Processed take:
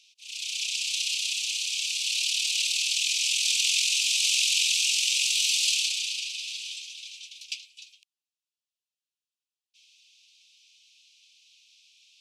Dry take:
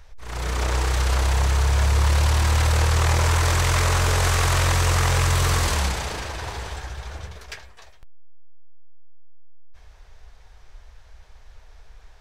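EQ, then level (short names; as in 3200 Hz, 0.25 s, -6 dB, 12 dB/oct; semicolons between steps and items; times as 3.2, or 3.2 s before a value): steep high-pass 2500 Hz 96 dB/oct; air absorption 77 m; high shelf 10000 Hz +6.5 dB; +8.0 dB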